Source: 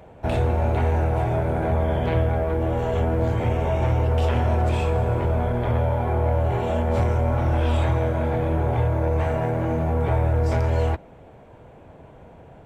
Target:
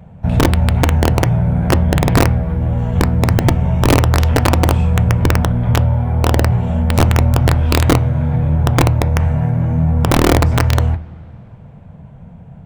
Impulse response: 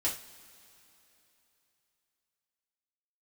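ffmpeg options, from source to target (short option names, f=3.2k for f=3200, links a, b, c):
-filter_complex "[0:a]lowshelf=f=250:t=q:w=3:g=9.5,aeval=exprs='(mod(1.58*val(0)+1,2)-1)/1.58':c=same,asplit=2[a][b];[1:a]atrim=start_sample=2205,lowpass=2.3k[c];[b][c]afir=irnorm=-1:irlink=0,volume=-14dB[d];[a][d]amix=inputs=2:normalize=0,volume=-2dB"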